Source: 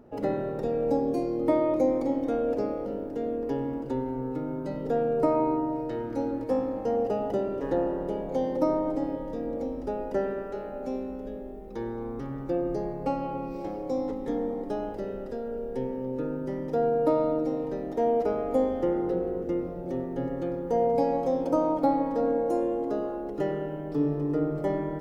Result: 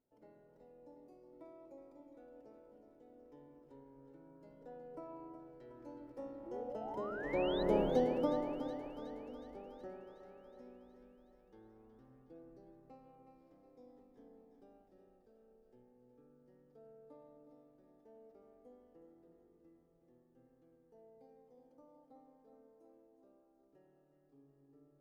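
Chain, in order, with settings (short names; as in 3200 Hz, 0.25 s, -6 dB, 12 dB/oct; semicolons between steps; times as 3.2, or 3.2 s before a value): Doppler pass-by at 7.79, 17 m/s, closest 2.4 m; painted sound rise, 6.46–7.63, 320–4100 Hz -49 dBFS; on a send: thinning echo 0.368 s, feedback 65%, high-pass 350 Hz, level -9 dB; on the sum: gain +1 dB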